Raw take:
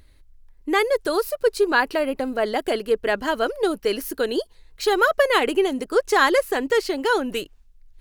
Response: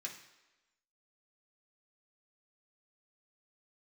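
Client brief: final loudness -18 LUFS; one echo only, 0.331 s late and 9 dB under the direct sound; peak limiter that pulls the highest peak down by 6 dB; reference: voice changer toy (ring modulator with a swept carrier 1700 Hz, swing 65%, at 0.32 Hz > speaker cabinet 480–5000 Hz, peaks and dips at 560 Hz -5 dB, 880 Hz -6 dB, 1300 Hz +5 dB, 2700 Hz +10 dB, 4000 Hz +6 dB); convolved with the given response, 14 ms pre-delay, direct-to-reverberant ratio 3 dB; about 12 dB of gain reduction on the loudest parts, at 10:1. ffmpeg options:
-filter_complex "[0:a]acompressor=threshold=-26dB:ratio=10,alimiter=limit=-22dB:level=0:latency=1,aecho=1:1:331:0.355,asplit=2[a][b];[1:a]atrim=start_sample=2205,adelay=14[c];[b][c]afir=irnorm=-1:irlink=0,volume=-1dB[d];[a][d]amix=inputs=2:normalize=0,aeval=exprs='val(0)*sin(2*PI*1700*n/s+1700*0.65/0.32*sin(2*PI*0.32*n/s))':c=same,highpass=480,equalizer=f=560:t=q:w=4:g=-5,equalizer=f=880:t=q:w=4:g=-6,equalizer=f=1.3k:t=q:w=4:g=5,equalizer=f=2.7k:t=q:w=4:g=10,equalizer=f=4k:t=q:w=4:g=6,lowpass=f=5k:w=0.5412,lowpass=f=5k:w=1.3066,volume=10dB"

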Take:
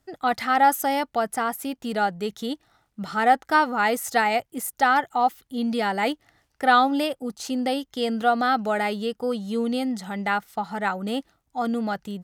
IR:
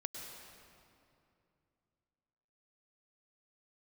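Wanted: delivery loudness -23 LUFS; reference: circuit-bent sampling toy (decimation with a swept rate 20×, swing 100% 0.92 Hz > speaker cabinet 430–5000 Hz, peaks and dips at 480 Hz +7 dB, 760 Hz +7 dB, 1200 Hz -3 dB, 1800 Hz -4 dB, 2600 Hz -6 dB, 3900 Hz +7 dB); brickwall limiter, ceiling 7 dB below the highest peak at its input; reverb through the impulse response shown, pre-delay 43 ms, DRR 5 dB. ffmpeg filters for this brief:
-filter_complex "[0:a]alimiter=limit=-13.5dB:level=0:latency=1,asplit=2[a][b];[1:a]atrim=start_sample=2205,adelay=43[c];[b][c]afir=irnorm=-1:irlink=0,volume=-4dB[d];[a][d]amix=inputs=2:normalize=0,acrusher=samples=20:mix=1:aa=0.000001:lfo=1:lforange=20:lforate=0.92,highpass=430,equalizer=f=480:t=q:w=4:g=7,equalizer=f=760:t=q:w=4:g=7,equalizer=f=1.2k:t=q:w=4:g=-3,equalizer=f=1.8k:t=q:w=4:g=-4,equalizer=f=2.6k:t=q:w=4:g=-6,equalizer=f=3.9k:t=q:w=4:g=7,lowpass=f=5k:w=0.5412,lowpass=f=5k:w=1.3066,volume=-0.5dB"

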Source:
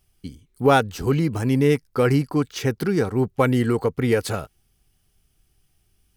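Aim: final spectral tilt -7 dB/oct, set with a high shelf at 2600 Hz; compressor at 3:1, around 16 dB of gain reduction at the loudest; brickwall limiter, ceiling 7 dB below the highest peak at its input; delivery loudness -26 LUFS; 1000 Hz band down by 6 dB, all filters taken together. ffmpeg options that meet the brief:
-af "equalizer=f=1k:t=o:g=-7.5,highshelf=f=2.6k:g=-7,acompressor=threshold=-36dB:ratio=3,volume=13dB,alimiter=limit=-16dB:level=0:latency=1"

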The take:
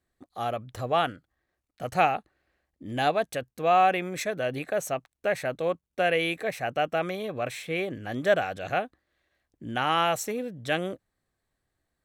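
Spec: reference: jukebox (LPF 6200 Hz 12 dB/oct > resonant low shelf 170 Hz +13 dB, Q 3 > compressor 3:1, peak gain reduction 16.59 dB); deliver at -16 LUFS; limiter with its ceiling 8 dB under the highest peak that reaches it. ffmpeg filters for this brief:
-af "alimiter=limit=-17.5dB:level=0:latency=1,lowpass=6.2k,lowshelf=f=170:t=q:w=3:g=13,acompressor=threshold=-38dB:ratio=3,volume=22.5dB"

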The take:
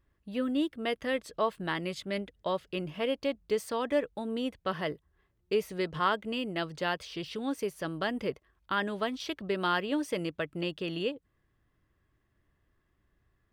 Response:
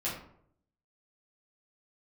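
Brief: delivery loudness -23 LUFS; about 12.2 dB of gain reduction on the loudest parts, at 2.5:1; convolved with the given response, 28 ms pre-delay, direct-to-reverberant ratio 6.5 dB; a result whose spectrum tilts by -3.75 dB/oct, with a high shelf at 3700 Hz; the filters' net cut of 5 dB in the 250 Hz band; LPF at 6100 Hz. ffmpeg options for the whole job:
-filter_complex "[0:a]lowpass=6.1k,equalizer=f=250:t=o:g=-6.5,highshelf=f=3.7k:g=-9,acompressor=threshold=-44dB:ratio=2.5,asplit=2[a][b];[1:a]atrim=start_sample=2205,adelay=28[c];[b][c]afir=irnorm=-1:irlink=0,volume=-11.5dB[d];[a][d]amix=inputs=2:normalize=0,volume=20.5dB"

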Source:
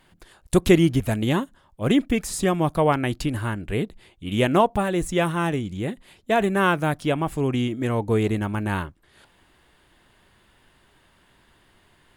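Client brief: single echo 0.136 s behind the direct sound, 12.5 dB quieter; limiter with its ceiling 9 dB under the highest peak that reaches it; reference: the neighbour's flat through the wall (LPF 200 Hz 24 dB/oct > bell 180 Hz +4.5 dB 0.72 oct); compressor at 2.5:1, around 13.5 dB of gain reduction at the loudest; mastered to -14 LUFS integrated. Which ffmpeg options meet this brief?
-af "acompressor=threshold=-31dB:ratio=2.5,alimiter=level_in=0.5dB:limit=-24dB:level=0:latency=1,volume=-0.5dB,lowpass=f=200:w=0.5412,lowpass=f=200:w=1.3066,equalizer=f=180:t=o:w=0.72:g=4.5,aecho=1:1:136:0.237,volume=23dB"

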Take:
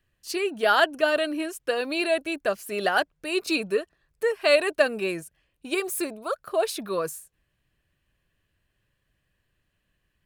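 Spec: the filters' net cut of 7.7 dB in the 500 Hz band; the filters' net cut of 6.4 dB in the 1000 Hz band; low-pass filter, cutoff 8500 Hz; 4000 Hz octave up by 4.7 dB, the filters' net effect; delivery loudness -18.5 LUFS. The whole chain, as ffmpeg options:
-af "lowpass=8.5k,equalizer=f=500:t=o:g=-8,equalizer=f=1k:t=o:g=-7,equalizer=f=4k:t=o:g=6.5,volume=9.5dB"

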